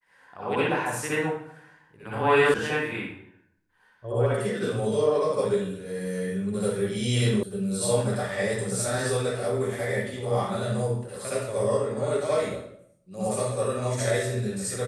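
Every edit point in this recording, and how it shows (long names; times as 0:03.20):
0:02.54: cut off before it has died away
0:07.43: cut off before it has died away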